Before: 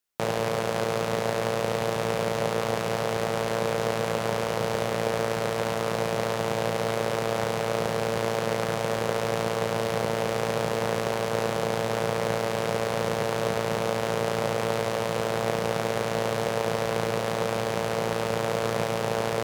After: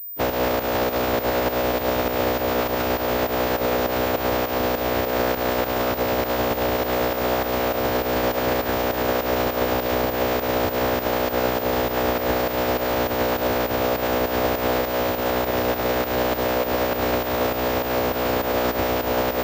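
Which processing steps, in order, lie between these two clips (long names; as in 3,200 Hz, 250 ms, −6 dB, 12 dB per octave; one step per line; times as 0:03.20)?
phase-vocoder pitch shift with formants kept −10.5 semitones
fake sidechain pumping 101 BPM, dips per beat 2, −10 dB, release 133 ms
switching amplifier with a slow clock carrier 15,000 Hz
level +6 dB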